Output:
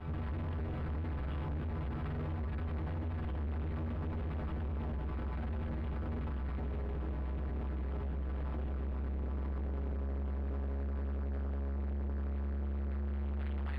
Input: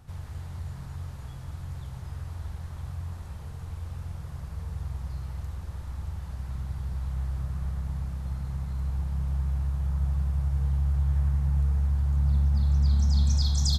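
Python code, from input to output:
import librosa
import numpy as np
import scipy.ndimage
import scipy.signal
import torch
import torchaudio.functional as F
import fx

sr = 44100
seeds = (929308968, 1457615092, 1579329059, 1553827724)

y = fx.fuzz(x, sr, gain_db=46.0, gate_db=-54.0)
y = fx.stiff_resonator(y, sr, f0_hz=75.0, decay_s=0.45, stiffness=0.008)
y = fx.sample_hold(y, sr, seeds[0], rate_hz=6200.0, jitter_pct=0)
y = np.clip(y, -10.0 ** (-29.5 / 20.0), 10.0 ** (-29.5 / 20.0))
y = fx.air_absorb(y, sr, metres=490.0)
y = F.gain(torch.from_numpy(y), -5.0).numpy()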